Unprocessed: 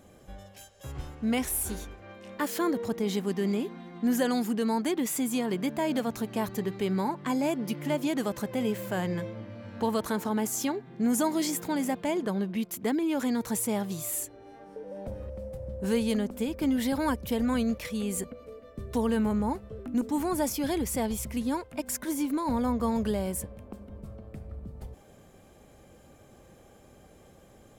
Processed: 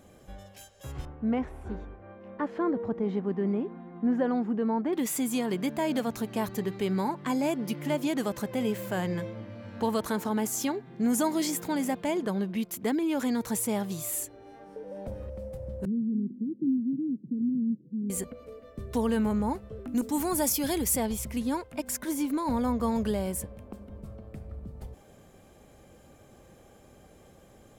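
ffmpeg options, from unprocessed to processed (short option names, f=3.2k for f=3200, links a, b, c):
-filter_complex "[0:a]asettb=1/sr,asplit=3[a][b][c];[a]atrim=end=1.054[d];[b]atrim=start=1.05:end=4.93,asetpts=PTS-STARTPTS,afade=t=in:d=0.004:c=qsin,afade=t=out:st=3.876:d=0.004:c=qsin,lowpass=1.3k[e];[c]atrim=start=4.926[f];[d][e]acrossfade=d=0.004:c1=hsin:c2=qsin[g];[g][f]acrossfade=d=0.004:c1=qsin:c2=hsin,asettb=1/sr,asplit=3[h][i][j];[h]atrim=end=15.854[k];[i]atrim=start=15.85:end=18.1,asetpts=PTS-STARTPTS,afade=t=in:d=0.004:c=qsin,afade=t=out:st=2.246:d=0.004:c=qsin,asuperpass=centerf=220:order=12:qfactor=0.95[l];[j]atrim=start=18.096[m];[k][l]acrossfade=d=0.004:c1=hsin:c2=qsin[n];[n][m]acrossfade=d=0.004:c1=qsin:c2=hsin,asettb=1/sr,asplit=3[o][p][q];[o]atrim=end=19.894[r];[p]atrim=start=19.89:end=20.97,asetpts=PTS-STARTPTS,afade=t=in:d=0.004:c=qsin,afade=t=out:st=1.076:d=0.004:c=qsin,aemphasis=mode=production:type=cd[s];[q]atrim=start=20.966[t];[r][s]acrossfade=d=0.004:c1=hsin:c2=qsin[u];[u][t]acrossfade=d=0.004:c1=qsin:c2=hsin"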